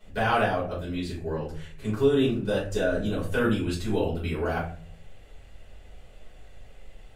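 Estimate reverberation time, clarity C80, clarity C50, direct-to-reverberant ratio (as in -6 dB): 0.50 s, 11.0 dB, 6.5 dB, -7.5 dB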